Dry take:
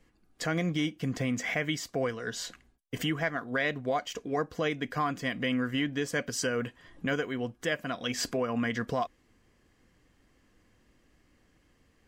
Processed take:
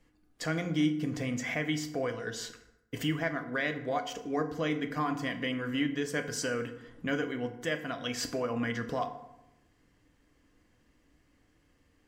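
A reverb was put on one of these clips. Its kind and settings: FDN reverb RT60 0.89 s, low-frequency decay 1.2×, high-frequency decay 0.6×, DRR 6.5 dB; trim -3 dB

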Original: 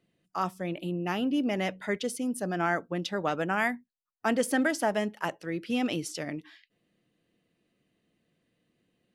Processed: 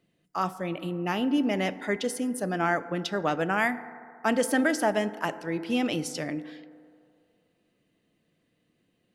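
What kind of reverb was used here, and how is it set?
FDN reverb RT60 2.4 s, low-frequency decay 0.7×, high-frequency decay 0.25×, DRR 12.5 dB; trim +2 dB

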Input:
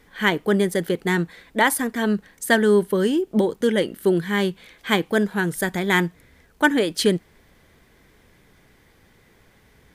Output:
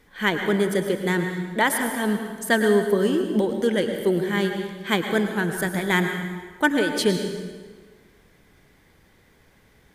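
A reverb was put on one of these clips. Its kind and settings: plate-style reverb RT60 1.5 s, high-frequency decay 0.8×, pre-delay 90 ms, DRR 5.5 dB; trim -2.5 dB

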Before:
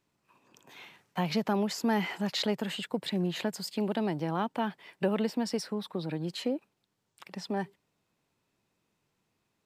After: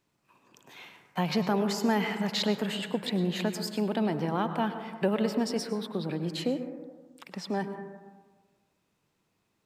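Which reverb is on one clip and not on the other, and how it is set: plate-style reverb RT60 1.4 s, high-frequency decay 0.25×, pre-delay 90 ms, DRR 8 dB; trim +1.5 dB

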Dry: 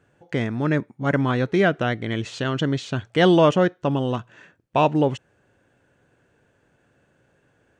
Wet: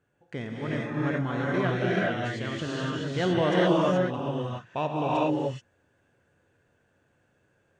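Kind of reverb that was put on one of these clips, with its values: gated-style reverb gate 450 ms rising, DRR -5.5 dB; trim -11.5 dB

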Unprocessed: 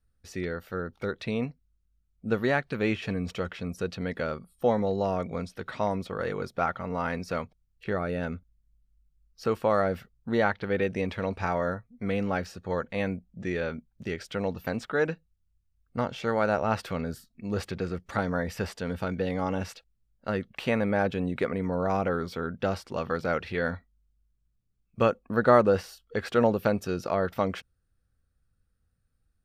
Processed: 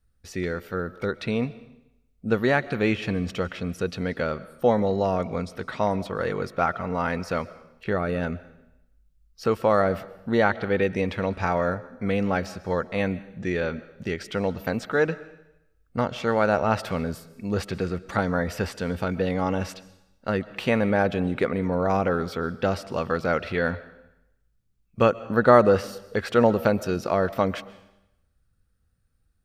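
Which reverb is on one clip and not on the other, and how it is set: algorithmic reverb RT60 0.86 s, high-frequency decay 1×, pre-delay 90 ms, DRR 17.5 dB; trim +4 dB

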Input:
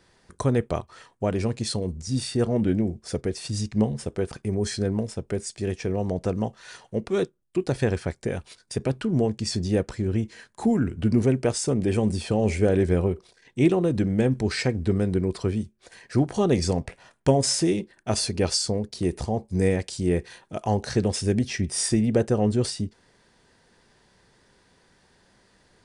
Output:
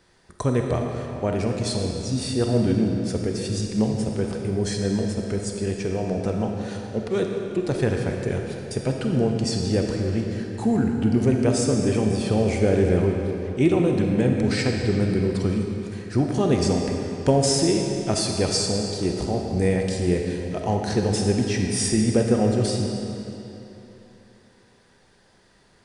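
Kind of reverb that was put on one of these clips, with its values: algorithmic reverb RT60 3.2 s, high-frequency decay 0.85×, pre-delay 5 ms, DRR 1.5 dB

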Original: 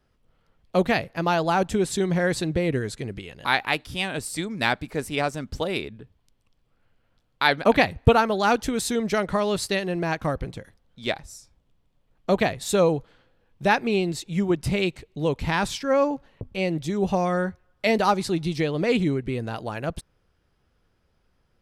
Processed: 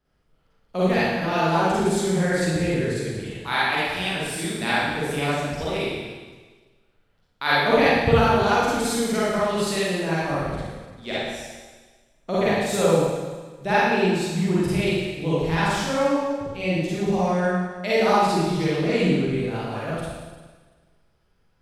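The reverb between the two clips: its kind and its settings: Schroeder reverb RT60 1.4 s, DRR -9.5 dB; trim -8 dB

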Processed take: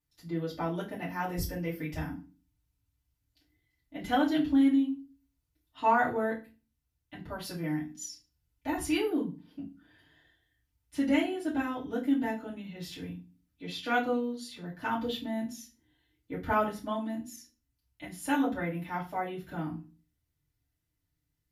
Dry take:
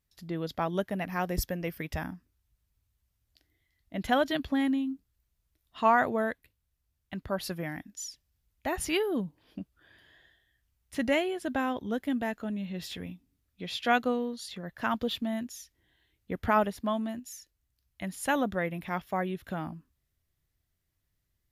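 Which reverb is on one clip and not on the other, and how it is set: FDN reverb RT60 0.31 s, low-frequency decay 1.55×, high-frequency decay 0.9×, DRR -8.5 dB; trim -12 dB

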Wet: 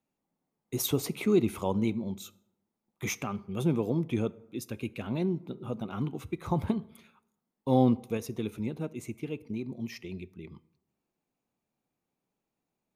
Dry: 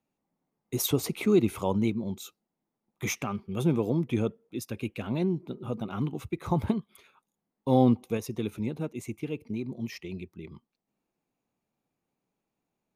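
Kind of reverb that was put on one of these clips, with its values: plate-style reverb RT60 0.86 s, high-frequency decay 0.55×, DRR 18 dB; trim -2 dB

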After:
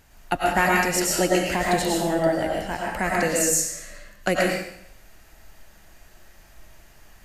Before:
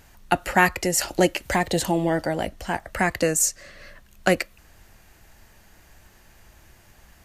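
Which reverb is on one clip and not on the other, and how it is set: algorithmic reverb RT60 0.7 s, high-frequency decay 1×, pre-delay 70 ms, DRR -3.5 dB; trim -4 dB

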